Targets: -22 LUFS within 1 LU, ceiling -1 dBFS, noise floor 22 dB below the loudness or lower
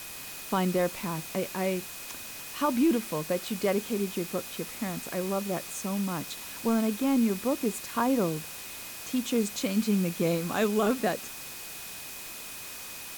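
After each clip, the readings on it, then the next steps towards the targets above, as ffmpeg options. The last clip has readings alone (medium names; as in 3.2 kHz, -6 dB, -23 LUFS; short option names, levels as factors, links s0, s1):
steady tone 2.5 kHz; tone level -49 dBFS; noise floor -41 dBFS; noise floor target -52 dBFS; loudness -30.0 LUFS; peak level -16.5 dBFS; loudness target -22.0 LUFS
-> -af "bandreject=f=2500:w=30"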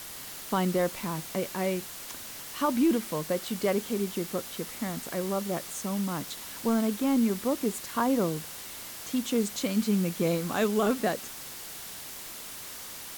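steady tone not found; noise floor -42 dBFS; noise floor target -52 dBFS
-> -af "afftdn=nr=10:nf=-42"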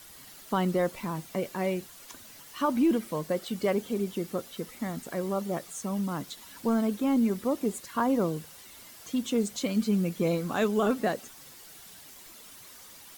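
noise floor -50 dBFS; noise floor target -52 dBFS
-> -af "afftdn=nr=6:nf=-50"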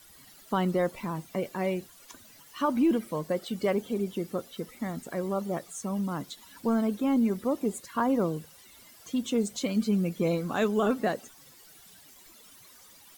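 noise floor -54 dBFS; loudness -29.5 LUFS; peak level -17.0 dBFS; loudness target -22.0 LUFS
-> -af "volume=2.37"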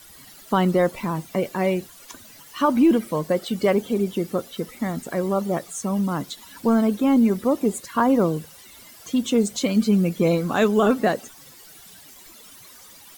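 loudness -22.0 LUFS; peak level -9.5 dBFS; noise floor -47 dBFS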